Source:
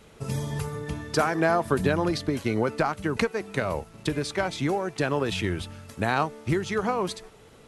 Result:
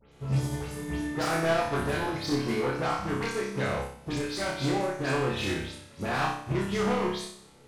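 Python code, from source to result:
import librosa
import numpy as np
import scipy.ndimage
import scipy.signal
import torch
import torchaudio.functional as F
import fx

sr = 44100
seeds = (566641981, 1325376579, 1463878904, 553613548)

y = fx.spec_delay(x, sr, highs='late', ms=114)
y = 10.0 ** (-27.0 / 20.0) * np.tanh(y / 10.0 ** (-27.0 / 20.0))
y = fx.doubler(y, sr, ms=14.0, db=-5.0)
y = fx.room_flutter(y, sr, wall_m=5.2, rt60_s=0.79)
y = fx.upward_expand(y, sr, threshold_db=-40.0, expansion=1.5)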